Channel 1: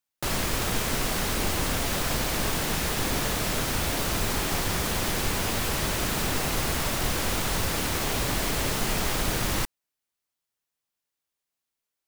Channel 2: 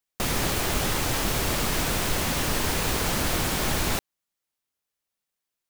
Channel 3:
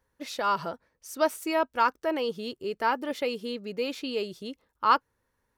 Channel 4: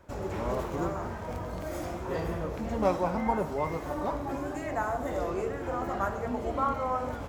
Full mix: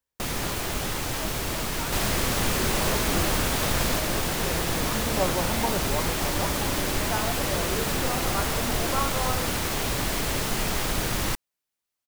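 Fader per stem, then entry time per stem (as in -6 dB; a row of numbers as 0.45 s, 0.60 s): 0.0 dB, -3.5 dB, -18.0 dB, -0.5 dB; 1.70 s, 0.00 s, 0.00 s, 2.35 s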